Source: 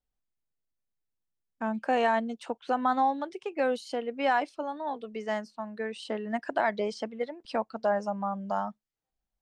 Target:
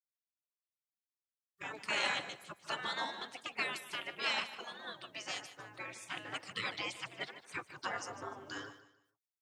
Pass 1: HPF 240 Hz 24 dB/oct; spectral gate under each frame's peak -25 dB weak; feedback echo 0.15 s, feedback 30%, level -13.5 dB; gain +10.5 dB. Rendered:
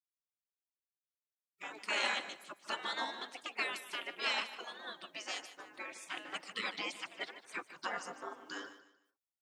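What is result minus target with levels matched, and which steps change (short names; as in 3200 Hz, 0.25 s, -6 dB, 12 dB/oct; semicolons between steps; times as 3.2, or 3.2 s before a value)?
125 Hz band -11.0 dB
change: HPF 84 Hz 24 dB/oct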